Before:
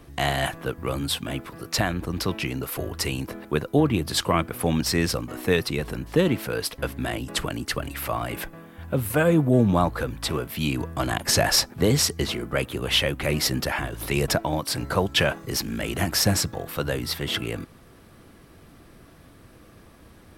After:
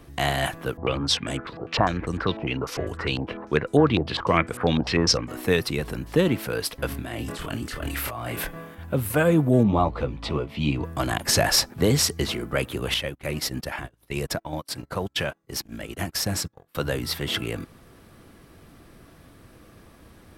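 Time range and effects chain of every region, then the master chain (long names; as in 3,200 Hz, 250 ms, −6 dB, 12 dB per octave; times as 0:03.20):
0:00.77–0:05.29: parametric band 470 Hz +4 dB 0.31 octaves + low-pass on a step sequencer 10 Hz 760–8,000 Hz
0:06.88–0:08.75: hum removal 253.8 Hz, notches 14 + compressor whose output falls as the input rises −33 dBFS + double-tracking delay 26 ms −3 dB
0:09.63–0:10.84: low-pass filter 3,300 Hz + parametric band 1,600 Hz −14 dB 0.3 octaves + double-tracking delay 14 ms −7 dB
0:12.94–0:16.75: downward compressor 2.5 to 1, threshold −24 dBFS + noise gate −29 dBFS, range −32 dB
whole clip: no processing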